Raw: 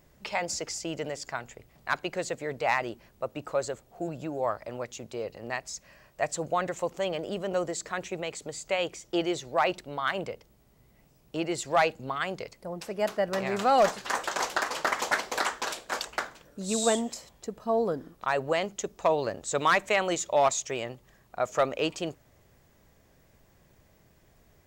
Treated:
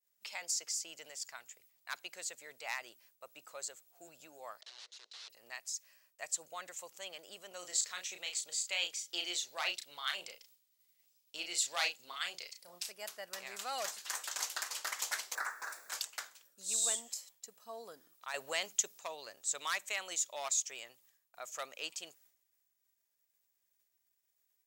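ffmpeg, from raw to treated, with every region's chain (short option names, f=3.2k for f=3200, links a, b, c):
-filter_complex "[0:a]asettb=1/sr,asplit=3[a][b][c];[a]atrim=end=4.614[d];[b]atrim=start=4.61:end=5.3,asetpts=PTS-STARTPTS,afade=t=in:d=0.004:c=qsin,afade=t=out:st=0.686:d=0.004:c=qsin,bandreject=f=1.6k:w=16,aeval=exprs='(mod(75*val(0)+1,2)-1)/75':c=same,highpass=f=370:w=0.5412,highpass=f=370:w=1.3066,equalizer=f=430:t=q:w=4:g=4,equalizer=f=2.3k:t=q:w=4:g=-4,equalizer=f=4k:t=q:w=4:g=6,lowpass=f=5.4k:w=0.5412,lowpass=f=5.4k:w=1.3066[e];[c]atrim=start=5.296[f];[d][e]acrossfade=d=0.004:c1=hsin:c2=qsin[g];[g][f]acrossfade=d=0.004:c1=qsin:c2=hsin,asettb=1/sr,asplit=3[h][i][j];[h]atrim=end=7.594[k];[i]atrim=start=7.59:end=12.92,asetpts=PTS-STARTPTS,afade=t=in:d=0.004:c=qsin,afade=t=out:st=5.326:d=0.004:c=qsin,equalizer=f=3.9k:t=o:w=1.7:g=8,asplit=2[l][m];[m]adelay=34,volume=-6dB[n];[l][n]amix=inputs=2:normalize=0,atrim=end_sample=235053[o];[j]atrim=start=12.916[p];[k][o]acrossfade=d=0.004:c1=hsin:c2=qsin[q];[q][p]acrossfade=d=0.004:c1=qsin:c2=hsin,asettb=1/sr,asplit=3[r][s][t];[r]atrim=end=15.354[u];[s]atrim=start=15.35:end=15.9,asetpts=PTS-STARTPTS,afade=t=in:d=0.004:c=qsin,afade=t=out:st=0.546:d=0.004:c=qsin,aeval=exprs='val(0)+0.5*0.00841*sgn(val(0))':c=same,highshelf=f=2.2k:t=q:w=3:g=-11,bandreject=f=3.1k:w=5.6[v];[t]atrim=start=15.896[w];[u][v]acrossfade=d=0.004:c1=hsin:c2=qsin[x];[x][w]acrossfade=d=0.004:c1=qsin:c2=hsin,asettb=1/sr,asplit=3[y][z][aa];[y]atrim=end=18.344[ab];[z]atrim=start=18.34:end=18.99,asetpts=PTS-STARTPTS,afade=t=in:d=0.004:c=qsin,afade=t=out:st=0.646:d=0.004:c=qsin,acontrast=81,bandreject=f=1.2k:w=24[ac];[aa]atrim=start=18.986[ad];[ab][ac]acrossfade=d=0.004:c1=hsin:c2=qsin[ae];[ae][ad]acrossfade=d=0.004:c1=qsin:c2=hsin,agate=range=-33dB:threshold=-52dB:ratio=3:detection=peak,aderivative"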